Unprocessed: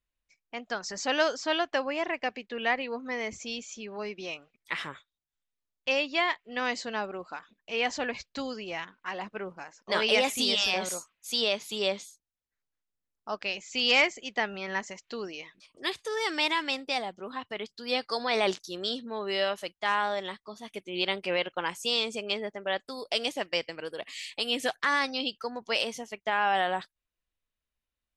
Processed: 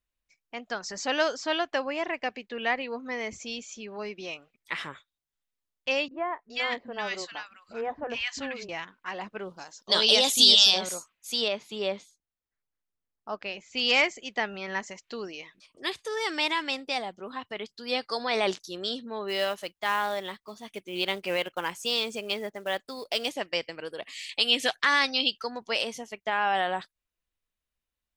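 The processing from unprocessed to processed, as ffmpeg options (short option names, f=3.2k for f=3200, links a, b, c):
-filter_complex "[0:a]asettb=1/sr,asplit=3[a][b][c];[a]atrim=end=6.084[d];[b]atrim=start=6.08:end=8.69,asetpts=PTS-STARTPTS,afade=t=in:d=0.004:c=qsin,afade=t=out:st=2.606:d=0.004:c=qsin,acrossover=split=250|1400[e][f][g];[f]adelay=30[h];[g]adelay=420[i];[e][h][i]amix=inputs=3:normalize=0,atrim=end_sample=115101[j];[c]atrim=start=8.686[k];[d][j]acrossfade=d=0.004:c1=hsin:c2=qsin[l];[l][k]acrossfade=d=0.004:c1=qsin:c2=hsin,asettb=1/sr,asplit=3[m][n][o];[m]atrim=end=9.394[p];[n]atrim=start=9.39:end=10.81,asetpts=PTS-STARTPTS,afade=t=in:d=0.004:c=qsin,afade=t=out:st=1.416:d=0.004:c=qsin,highshelf=f=2.9k:t=q:w=3:g=7.5[q];[o]atrim=start=10.806[r];[p][q]acrossfade=d=0.004:c1=hsin:c2=qsin[s];[s][r]acrossfade=d=0.004:c1=qsin:c2=hsin,asettb=1/sr,asplit=3[t][u][v];[t]atrim=end=11.484[w];[u]atrim=start=11.48:end=13.77,asetpts=PTS-STARTPTS,afade=t=in:d=0.004:c=qsin,afade=t=out:st=2.286:d=0.004:c=qsin,lowpass=f=2.2k:p=1[x];[v]atrim=start=13.766[y];[w][x]acrossfade=d=0.004:c1=hsin:c2=qsin[z];[z][y]acrossfade=d=0.004:c1=qsin:c2=hsin,asplit=3[aa][ab][ac];[aa]afade=t=out:st=19.28:d=0.02[ad];[ab]acrusher=bits=5:mode=log:mix=0:aa=0.000001,afade=t=in:st=19.28:d=0.02,afade=t=out:st=23.29:d=0.02[ae];[ac]afade=t=in:st=23.29:d=0.02[af];[ad][ae][af]amix=inputs=3:normalize=0,asettb=1/sr,asplit=3[ag][ah][ai];[ag]atrim=end=24.294[aj];[ah]atrim=start=24.29:end=25.63,asetpts=PTS-STARTPTS,afade=t=in:d=0.004:c=qsin,afade=t=out:st=1.336:d=0.004:c=qsin,equalizer=f=3.5k:t=o:w=2:g=7.5[ak];[ai]atrim=start=25.626[al];[aj][ak]acrossfade=d=0.004:c1=hsin:c2=qsin[am];[am][al]acrossfade=d=0.004:c1=qsin:c2=hsin"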